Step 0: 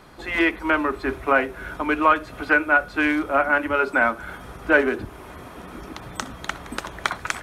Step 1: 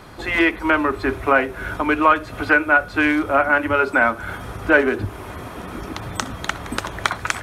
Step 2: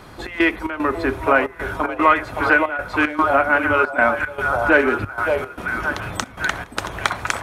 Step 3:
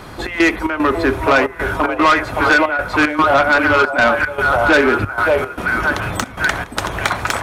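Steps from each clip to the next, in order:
in parallel at -2 dB: compression, threshold -27 dBFS, peak gain reduction 15 dB; on the sum: peaking EQ 100 Hz +11.5 dB 0.22 oct; trim +1 dB
repeats whose band climbs or falls 569 ms, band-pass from 650 Hz, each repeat 0.7 oct, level -1 dB; trance gate "xx.xx.xxx" 113 bpm -12 dB
saturation -14 dBFS, distortion -11 dB; trim +7 dB

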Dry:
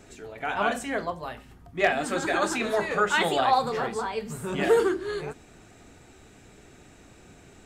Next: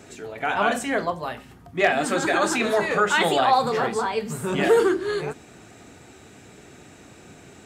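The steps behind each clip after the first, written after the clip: high-pass 90 Hz 12 dB/octave; in parallel at -1 dB: peak limiter -19.5 dBFS, peak gain reduction 8.5 dB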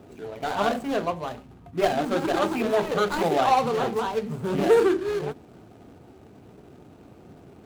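median filter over 25 samples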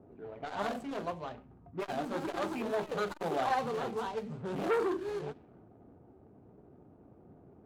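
level-controlled noise filter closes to 840 Hz, open at -22 dBFS; transformer saturation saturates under 1 kHz; trim -8.5 dB

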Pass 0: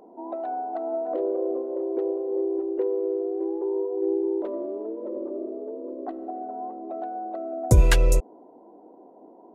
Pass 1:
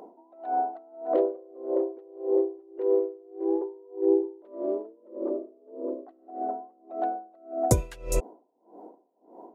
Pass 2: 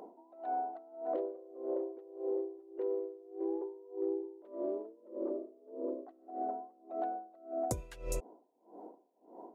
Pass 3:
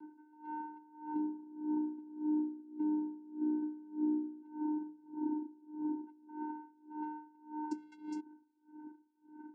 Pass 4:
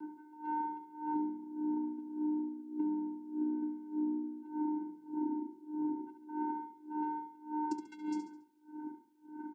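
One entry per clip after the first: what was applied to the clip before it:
bass shelf 190 Hz -9 dB; logarithmic tremolo 1.7 Hz, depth 29 dB; trim +6.5 dB
compression 6:1, threshold -29 dBFS, peak gain reduction 13.5 dB; trim -3.5 dB
vocoder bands 8, square 304 Hz; trim +1.5 dB
compression 5:1, threshold -39 dBFS, peak gain reduction 9 dB; on a send: feedback delay 70 ms, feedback 39%, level -8 dB; on the sum: trim +7 dB

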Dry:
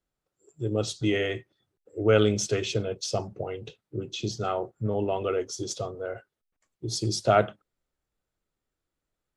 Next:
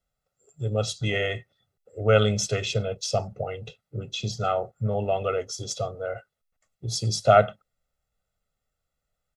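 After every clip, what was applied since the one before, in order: comb 1.5 ms, depth 79%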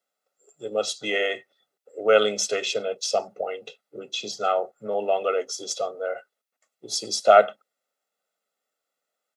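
high-pass 280 Hz 24 dB/octave; trim +2.5 dB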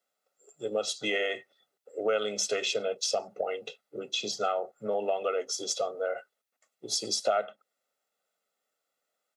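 compression 4:1, threshold -26 dBFS, peak gain reduction 14.5 dB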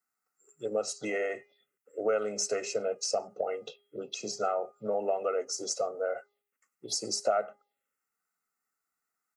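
touch-sensitive phaser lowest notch 570 Hz, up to 3.4 kHz, full sweep at -31 dBFS; de-hum 408.5 Hz, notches 8

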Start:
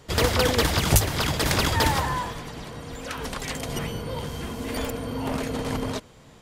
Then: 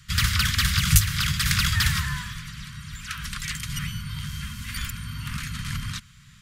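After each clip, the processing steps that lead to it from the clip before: inverse Chebyshev band-stop 290–830 Hz, stop band 40 dB; trim +2 dB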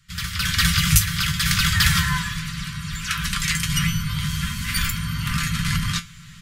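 feedback comb 170 Hz, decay 0.18 s, harmonics all, mix 80%; level rider gain up to 16.5 dB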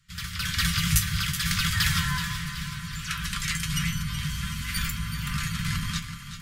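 echo whose repeats swap between lows and highs 188 ms, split 1.1 kHz, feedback 72%, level -7.5 dB; trim -6.5 dB

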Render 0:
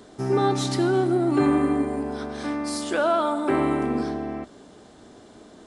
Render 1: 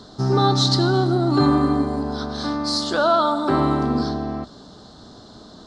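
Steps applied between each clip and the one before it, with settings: FFT filter 170 Hz 0 dB, 360 Hz -9 dB, 1.3 kHz -2 dB, 2.4 kHz -18 dB, 4.2 kHz +7 dB, 9.9 kHz -17 dB; trim +9 dB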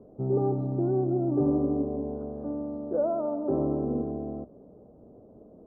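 four-pole ladder low-pass 600 Hz, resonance 55%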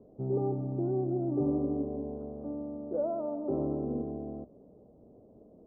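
low-pass 1.1 kHz 12 dB/octave; trim -4.5 dB

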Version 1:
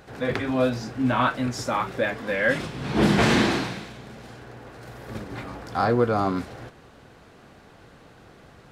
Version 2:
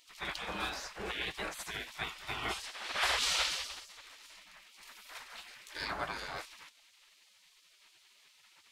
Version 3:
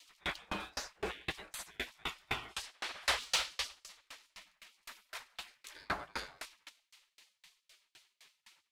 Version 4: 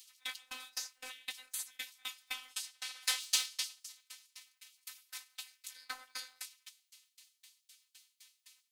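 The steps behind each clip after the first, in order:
spectral gate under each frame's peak -20 dB weak
saturation -25.5 dBFS, distortion -18 dB; sawtooth tremolo in dB decaying 3.9 Hz, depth 35 dB; trim +7 dB
robot voice 256 Hz; pre-emphasis filter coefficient 0.97; trim +8 dB

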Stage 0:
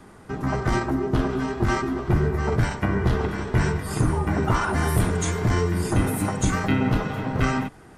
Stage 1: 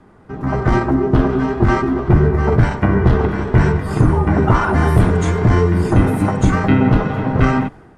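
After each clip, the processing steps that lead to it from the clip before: low-pass 1.5 kHz 6 dB/octave; level rider gain up to 11.5 dB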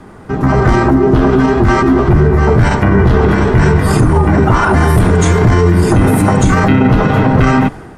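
treble shelf 4.8 kHz +7.5 dB; loudness maximiser +12.5 dB; trim -1 dB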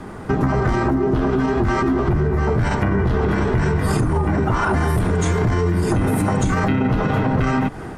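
compression 12:1, threshold -17 dBFS, peak gain reduction 12.5 dB; trim +2 dB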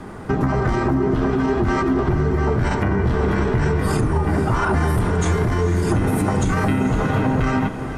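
echo that smears into a reverb 504 ms, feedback 41%, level -10 dB; trim -1 dB

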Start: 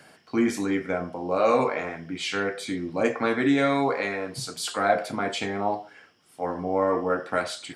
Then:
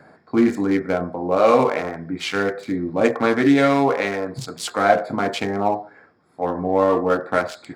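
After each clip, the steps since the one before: local Wiener filter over 15 samples; trim +6.5 dB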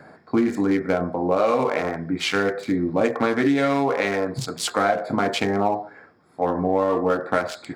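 compression 6:1, threshold -19 dBFS, peak gain reduction 9.5 dB; trim +2.5 dB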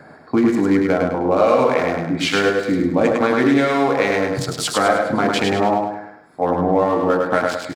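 feedback delay 103 ms, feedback 41%, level -3.5 dB; trim +3 dB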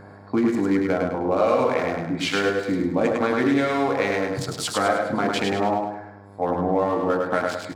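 mains buzz 100 Hz, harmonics 11, -41 dBFS -4 dB/octave; trim -5 dB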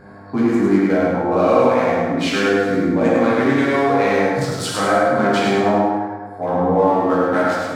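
plate-style reverb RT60 1.4 s, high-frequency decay 0.5×, DRR -6 dB; trim -2 dB

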